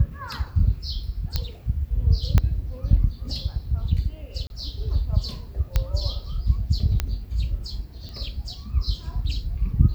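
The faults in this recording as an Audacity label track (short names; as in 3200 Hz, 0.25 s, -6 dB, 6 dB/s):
1.360000	1.360000	pop -10 dBFS
2.380000	2.380000	pop -7 dBFS
4.470000	4.500000	gap 31 ms
5.760000	5.760000	pop -8 dBFS
7.000000	7.000000	pop -9 dBFS
8.090000	8.090000	pop -26 dBFS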